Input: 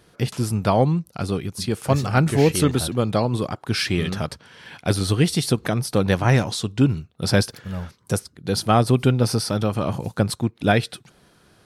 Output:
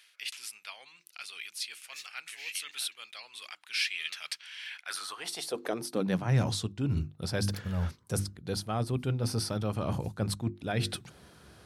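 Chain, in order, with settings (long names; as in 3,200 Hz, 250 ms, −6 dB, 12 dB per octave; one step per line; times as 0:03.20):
mains-hum notches 50/100/150/200/250/300/350 Hz
reversed playback
downward compressor 6 to 1, threshold −30 dBFS, peak gain reduction 16.5 dB
reversed playback
high-pass filter sweep 2,400 Hz → 62 Hz, 0:04.66–0:06.76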